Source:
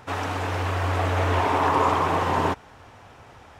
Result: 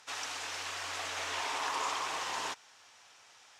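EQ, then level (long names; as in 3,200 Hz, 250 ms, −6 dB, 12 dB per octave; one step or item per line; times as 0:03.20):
resonant band-pass 6,100 Hz, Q 1.3
+4.5 dB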